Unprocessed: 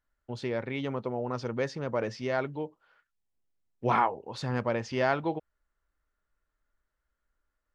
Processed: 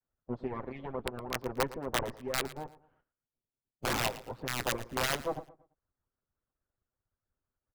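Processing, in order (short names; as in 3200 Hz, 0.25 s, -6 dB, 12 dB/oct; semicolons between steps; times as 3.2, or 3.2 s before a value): minimum comb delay 7.8 ms; Bessel low-pass 840 Hz, order 2; wrapped overs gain 22.5 dB; harmonic-percussive split harmonic -18 dB; feedback echo 0.113 s, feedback 32%, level -17 dB; gain +3.5 dB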